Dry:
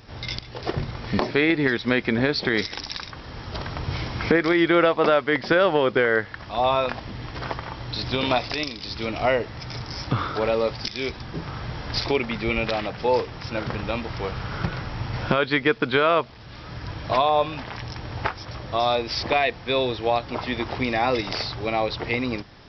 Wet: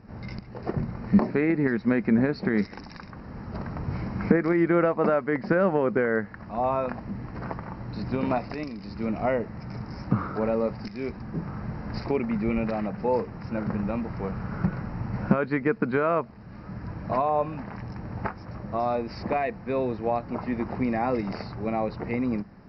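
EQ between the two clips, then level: running mean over 13 samples; bell 200 Hz +13 dB 0.54 oct; -4.0 dB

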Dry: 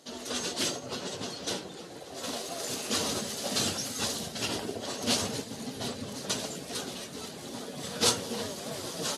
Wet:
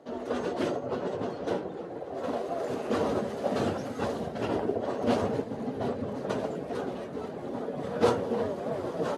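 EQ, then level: three-band isolator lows -15 dB, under 410 Hz, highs -18 dB, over 2300 Hz; tilt shelf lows +7.5 dB, about 850 Hz; low shelf 370 Hz +7 dB; +5.0 dB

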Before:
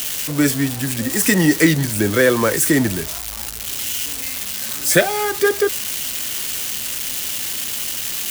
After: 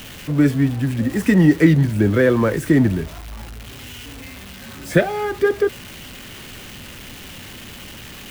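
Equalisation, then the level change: tone controls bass +3 dB, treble -15 dB; low shelf 430 Hz +7.5 dB; -4.5 dB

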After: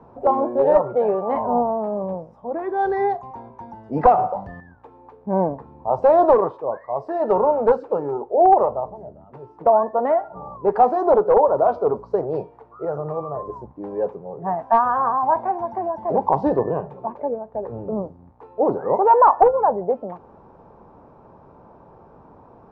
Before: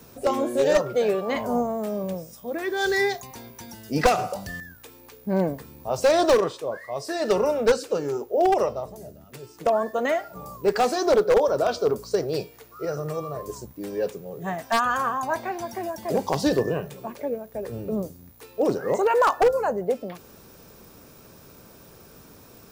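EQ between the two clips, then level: synth low-pass 900 Hz, resonance Q 3.9; 0.0 dB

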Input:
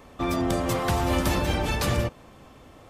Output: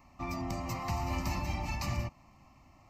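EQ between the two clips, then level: fixed phaser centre 2300 Hz, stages 8; -7.5 dB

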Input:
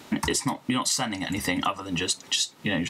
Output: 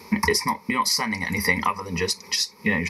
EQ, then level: notch 2800 Hz, Q 5.9; dynamic EQ 1800 Hz, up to +7 dB, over -45 dBFS, Q 3.1; ripple EQ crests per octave 0.85, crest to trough 17 dB; 0.0 dB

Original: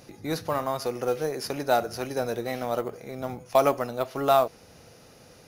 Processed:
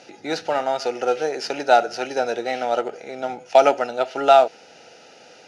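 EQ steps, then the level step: Butterworth band-stop 1100 Hz, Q 4; speaker cabinet 330–7200 Hz, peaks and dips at 770 Hz +5 dB, 1400 Hz +4 dB, 2800 Hz +7 dB; +5.5 dB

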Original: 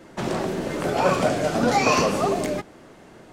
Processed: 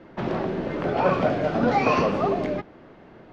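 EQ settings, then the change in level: air absorption 280 m; 0.0 dB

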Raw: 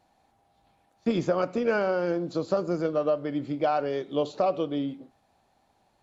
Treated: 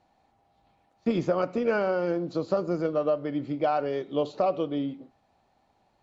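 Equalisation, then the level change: air absorption 72 m; notch 1600 Hz, Q 19; notch 3500 Hz, Q 30; 0.0 dB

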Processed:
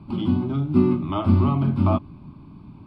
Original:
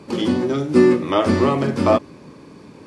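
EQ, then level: RIAA curve playback; fixed phaser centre 1800 Hz, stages 6; -5.5 dB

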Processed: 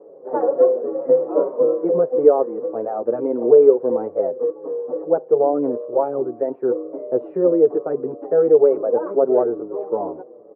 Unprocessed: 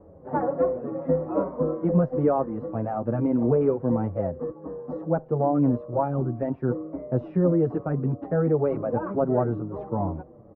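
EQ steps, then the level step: resonant high-pass 430 Hz, resonance Q 3.8; LPF 1100 Hz 6 dB/oct; +1.5 dB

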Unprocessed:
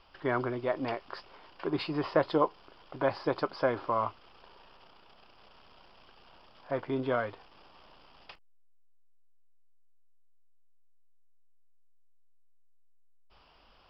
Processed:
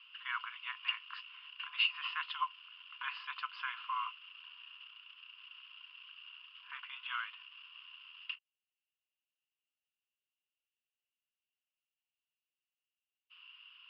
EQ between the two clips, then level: rippled Chebyshev high-pass 1000 Hz, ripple 3 dB; synth low-pass 2800 Hz, resonance Q 15; -5.0 dB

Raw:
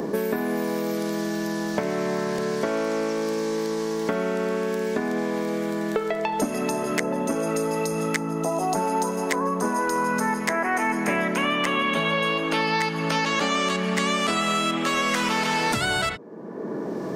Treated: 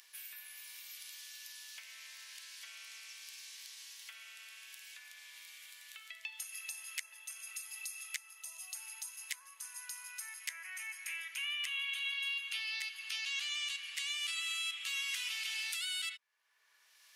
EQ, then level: ladder high-pass 2300 Hz, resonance 45%; high shelf 8600 Hz +5 dB; bell 11000 Hz +7.5 dB 0.47 oct; -5.0 dB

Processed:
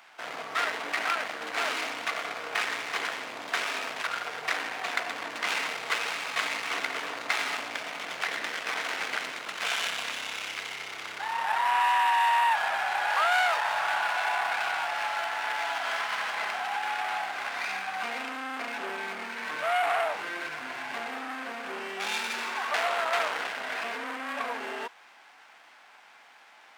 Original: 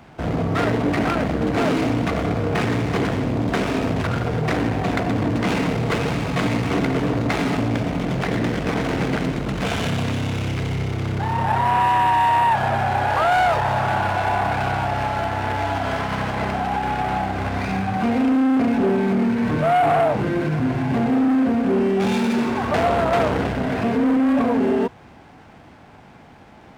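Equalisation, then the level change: HPF 1300 Hz 12 dB/oct; 0.0 dB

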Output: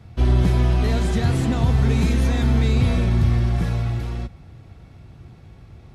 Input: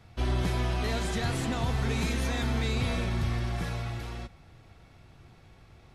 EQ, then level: HPF 42 Hz; low shelf 400 Hz +11 dB; +2.0 dB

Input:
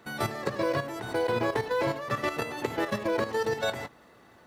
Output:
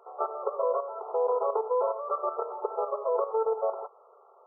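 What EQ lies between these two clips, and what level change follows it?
brick-wall FIR band-pass 380–1400 Hz; +2.0 dB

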